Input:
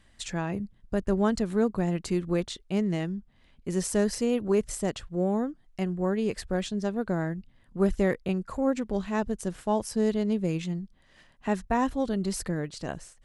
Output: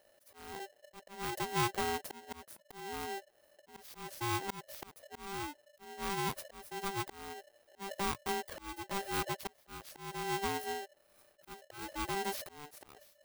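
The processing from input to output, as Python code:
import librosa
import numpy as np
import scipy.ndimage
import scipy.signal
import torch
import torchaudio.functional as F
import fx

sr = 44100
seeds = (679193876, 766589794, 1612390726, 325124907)

y = fx.bit_reversed(x, sr, seeds[0], block=16)
y = fx.auto_swell(y, sr, attack_ms=425.0)
y = y * np.sign(np.sin(2.0 * np.pi * 590.0 * np.arange(len(y)) / sr))
y = y * 10.0 ** (-7.5 / 20.0)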